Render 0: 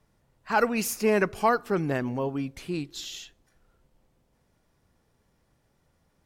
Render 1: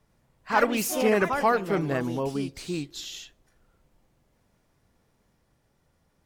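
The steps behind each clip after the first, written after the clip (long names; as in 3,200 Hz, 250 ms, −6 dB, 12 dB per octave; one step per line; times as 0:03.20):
delay with pitch and tempo change per echo 94 ms, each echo +3 semitones, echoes 3, each echo −6 dB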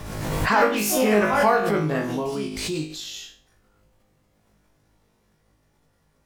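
on a send: flutter between parallel walls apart 3.3 metres, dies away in 0.4 s
on the sum: background raised ahead of every attack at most 35 dB per second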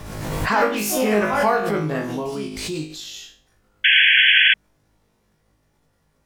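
sound drawn into the spectrogram noise, 0:03.84–0:04.54, 1,500–3,400 Hz −14 dBFS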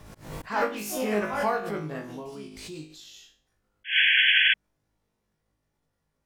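volume swells 151 ms
expander for the loud parts 1.5 to 1, over −27 dBFS
level −5.5 dB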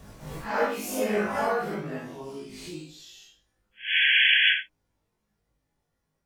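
random phases in long frames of 200 ms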